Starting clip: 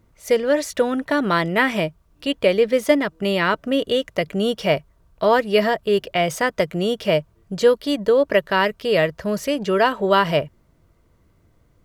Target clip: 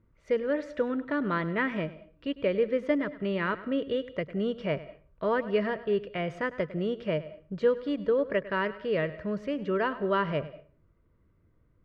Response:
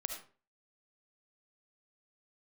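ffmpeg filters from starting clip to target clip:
-filter_complex "[0:a]lowpass=1900,equalizer=frequency=760:width_type=o:width=0.55:gain=-10,asplit=2[link_01][link_02];[1:a]atrim=start_sample=2205,adelay=102[link_03];[link_02][link_03]afir=irnorm=-1:irlink=0,volume=-15dB[link_04];[link_01][link_04]amix=inputs=2:normalize=0,volume=-7.5dB"

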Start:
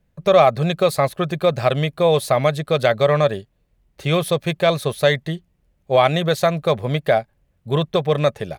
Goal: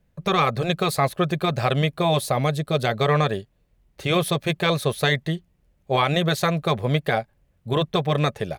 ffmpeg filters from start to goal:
ffmpeg -i in.wav -filter_complex "[0:a]asettb=1/sr,asplit=3[link_01][link_02][link_03];[link_01]atrim=end=2.214[link_04];[link_02]atrim=start=2.21:end=2.94,asetpts=PTS-STARTPTS,afade=type=in:duration=0.004:curve=qsin,afade=type=out:start_time=0.726:duration=0.004:curve=qsin,equalizer=frequency=1700:width_type=o:width=2.3:gain=-5[link_05];[link_03]atrim=start=2.936[link_06];[link_04][link_05]acrossfade=duration=0.004:curve1=hsin:curve2=qsin[link_07];[link_07][link_06]acrossfade=duration=0.004:curve1=qsin:curve2=hsin,afftfilt=real='re*lt(hypot(re,im),1.26)':imag='im*lt(hypot(re,im),1.26)':win_size=1024:overlap=0.75,alimiter=level_in=7.5dB:limit=-1dB:release=50:level=0:latency=1,volume=-7.5dB" out.wav

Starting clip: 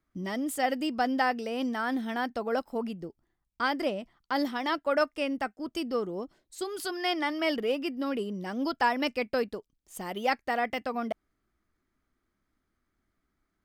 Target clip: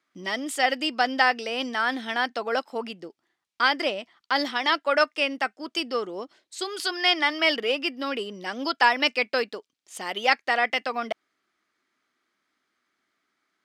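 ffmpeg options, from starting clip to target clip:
ffmpeg -i in.wav -af "crystalizer=i=9:c=0,highpass=290,lowpass=3500,aeval=exprs='0.531*(cos(1*acos(clip(val(0)/0.531,-1,1)))-cos(1*PI/2))+0.0119*(cos(2*acos(clip(val(0)/0.531,-1,1)))-cos(2*PI/2))':channel_layout=same,volume=1dB" out.wav

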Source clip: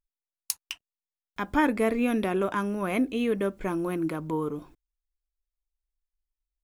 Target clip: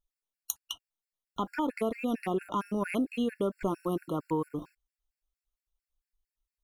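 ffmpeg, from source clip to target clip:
ffmpeg -i in.wav -af "acompressor=threshold=-28dB:ratio=6,afftfilt=real='re*gt(sin(2*PI*4.4*pts/sr)*(1-2*mod(floor(b*sr/1024/1400),2)),0)':imag='im*gt(sin(2*PI*4.4*pts/sr)*(1-2*mod(floor(b*sr/1024/1400),2)),0)':win_size=1024:overlap=0.75,volume=3dB" out.wav

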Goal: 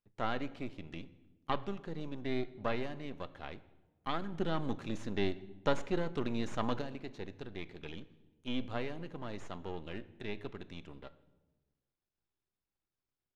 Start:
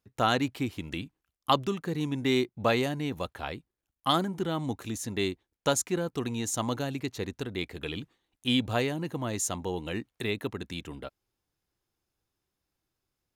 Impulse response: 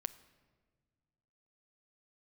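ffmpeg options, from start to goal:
-filter_complex "[0:a]aeval=exprs='if(lt(val(0),0),0.251*val(0),val(0))':channel_layout=same,acrossover=split=3000[link_01][link_02];[link_02]acompressor=threshold=-43dB:ratio=4:attack=1:release=60[link_03];[link_01][link_03]amix=inputs=2:normalize=0,lowpass=4500,asettb=1/sr,asplit=3[link_04][link_05][link_06];[link_04]atrim=end=4.324[link_07];[link_05]atrim=start=4.32:end=6.82,asetpts=PTS-STARTPTS,afade=type=in:duration=0.004:curve=qsin,afade=type=out:start_time=2.496:duration=0.004:curve=qsin,acontrast=68[link_08];[link_06]atrim=start=6.816[link_09];[link_07][link_08]acrossfade=duration=0.004:curve1=hsin:curve2=qsin[link_10];[link_10][link_09]acrossfade=duration=0.004:curve1=qsin:curve2=hsin[link_11];[1:a]atrim=start_sample=2205,asetrate=61740,aresample=44100[link_12];[link_11][link_12]afir=irnorm=-1:irlink=0,volume=-2.5dB"

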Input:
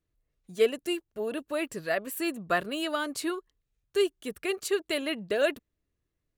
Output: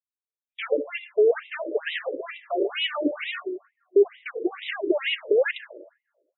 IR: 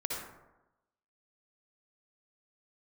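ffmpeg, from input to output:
-filter_complex "[0:a]agate=range=-49dB:threshold=-39dB:ratio=16:detection=peak,asplit=2[link_01][link_02];[link_02]highpass=frequency=720:poles=1,volume=37dB,asoftclip=type=tanh:threshold=-12dB[link_03];[link_01][link_03]amix=inputs=2:normalize=0,lowpass=frequency=5900:poles=1,volume=-6dB,equalizer=frequency=250:width_type=o:width=1:gain=11,equalizer=frequency=1000:width_type=o:width=1:gain=-12,equalizer=frequency=4000:width_type=o:width=1:gain=-7,asplit=2[link_04][link_05];[1:a]atrim=start_sample=2205[link_06];[link_05][link_06]afir=irnorm=-1:irlink=0,volume=-12dB[link_07];[link_04][link_07]amix=inputs=2:normalize=0,afftfilt=real='re*between(b*sr/1024,420*pow(2800/420,0.5+0.5*sin(2*PI*2.2*pts/sr))/1.41,420*pow(2800/420,0.5+0.5*sin(2*PI*2.2*pts/sr))*1.41)':imag='im*between(b*sr/1024,420*pow(2800/420,0.5+0.5*sin(2*PI*2.2*pts/sr))/1.41,420*pow(2800/420,0.5+0.5*sin(2*PI*2.2*pts/sr))*1.41)':win_size=1024:overlap=0.75"

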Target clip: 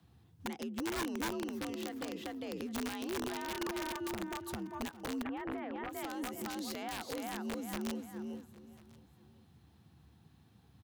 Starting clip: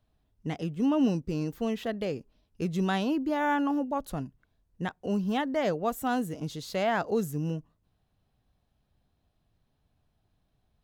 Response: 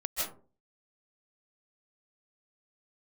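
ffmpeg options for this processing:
-filter_complex "[0:a]equalizer=frequency=540:width=3.6:gain=-10,asplit=2[link_01][link_02];[link_02]aecho=0:1:401|802|1203:0.631|0.114|0.0204[link_03];[link_01][link_03]amix=inputs=2:normalize=0,acompressor=threshold=-38dB:ratio=8,alimiter=level_in=14.5dB:limit=-24dB:level=0:latency=1:release=277,volume=-14.5dB,afreqshift=61,aeval=exprs='(mod(94.4*val(0)+1,2)-1)/94.4':channel_layout=same,asettb=1/sr,asplit=3[link_04][link_05][link_06];[link_04]atrim=end=5.234[link_07];[link_05]atrim=start=5.23:end=5.93,asetpts=PTS-STARTPTS,afade=type=in:duration=0.004:curve=qsin,afade=type=out:start_time=0.696:duration=0.004:curve=qsin,lowpass=frequency=2500:width=0.5412,lowpass=frequency=2500:width=1.3066[link_08];[link_06]atrim=start=5.926[link_09];[link_07][link_08]acrossfade=duration=0.004:curve1=hsin:curve2=qsin[link_10];[link_10][link_09]acrossfade=duration=0.004:curve1=qsin:curve2=hsin,asplit=2[link_11][link_12];[link_12]aecho=0:1:1043:0.0708[link_13];[link_11][link_13]amix=inputs=2:normalize=0,volume=8dB"

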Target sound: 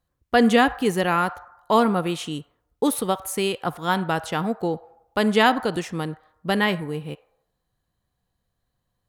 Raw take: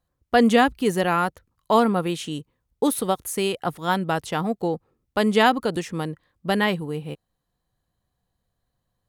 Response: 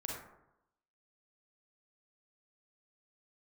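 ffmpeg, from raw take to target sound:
-filter_complex "[0:a]asplit=2[link_01][link_02];[link_02]highpass=frequency=620:width=0.5412,highpass=frequency=620:width=1.3066[link_03];[1:a]atrim=start_sample=2205,lowpass=4500[link_04];[link_03][link_04]afir=irnorm=-1:irlink=0,volume=-12.5dB[link_05];[link_01][link_05]amix=inputs=2:normalize=0"

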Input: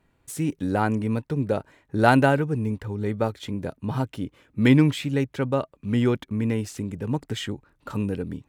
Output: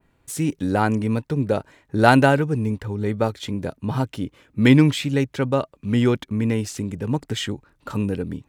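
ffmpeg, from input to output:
ffmpeg -i in.wav -af "adynamicequalizer=threshold=0.00631:dfrequency=5500:dqfactor=0.71:tfrequency=5500:tqfactor=0.71:attack=5:release=100:ratio=0.375:range=2:mode=boostabove:tftype=bell,volume=3dB" out.wav

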